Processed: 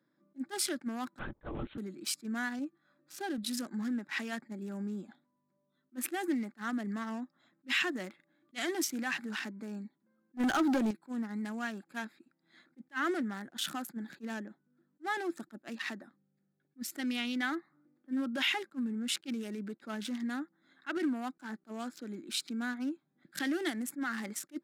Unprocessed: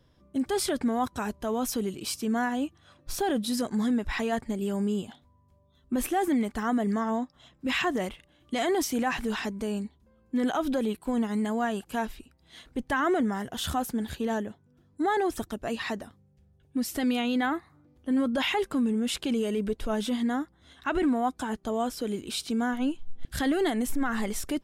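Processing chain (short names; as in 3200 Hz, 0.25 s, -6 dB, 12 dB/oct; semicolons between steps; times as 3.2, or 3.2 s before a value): Wiener smoothing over 15 samples; steep high-pass 160 Hz 36 dB/oct; low shelf 410 Hz -11.5 dB; 2.59–3.38 harmonic-percussive split percussive -9 dB; band shelf 660 Hz -11.5 dB; 1.19–1.78 LPC vocoder at 8 kHz whisper; 10.37–10.91 sample leveller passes 3; small resonant body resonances 340/570/820 Hz, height 7 dB, ringing for 65 ms; attack slew limiter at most 480 dB/s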